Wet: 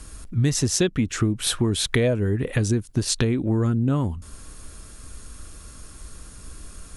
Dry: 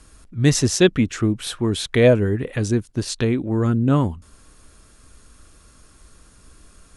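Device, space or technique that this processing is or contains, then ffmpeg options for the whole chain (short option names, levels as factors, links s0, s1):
ASMR close-microphone chain: -af "lowshelf=f=160:g=5,acompressor=threshold=0.0708:ratio=6,highshelf=f=7800:g=7.5,volume=1.68"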